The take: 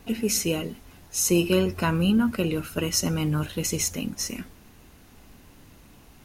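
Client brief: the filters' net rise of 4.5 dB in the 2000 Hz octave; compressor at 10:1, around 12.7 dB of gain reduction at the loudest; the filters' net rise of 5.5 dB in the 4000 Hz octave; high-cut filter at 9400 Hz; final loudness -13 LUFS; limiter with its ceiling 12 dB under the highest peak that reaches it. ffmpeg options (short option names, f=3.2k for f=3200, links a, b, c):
-af "lowpass=9.4k,equalizer=f=2k:t=o:g=3.5,equalizer=f=4k:t=o:g=7.5,acompressor=threshold=-29dB:ratio=10,volume=25.5dB,alimiter=limit=-4dB:level=0:latency=1"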